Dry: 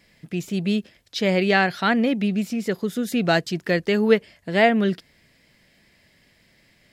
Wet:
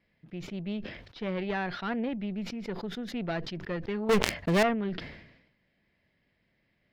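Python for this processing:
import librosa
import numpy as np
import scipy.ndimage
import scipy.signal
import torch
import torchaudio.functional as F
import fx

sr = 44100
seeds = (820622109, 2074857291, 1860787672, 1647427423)

y = fx.tube_stage(x, sr, drive_db=14.0, bias=0.75)
y = fx.air_absorb(y, sr, metres=290.0)
y = fx.leveller(y, sr, passes=5, at=(4.09, 4.63))
y = fx.sustainer(y, sr, db_per_s=63.0)
y = F.gain(torch.from_numpy(y), -7.5).numpy()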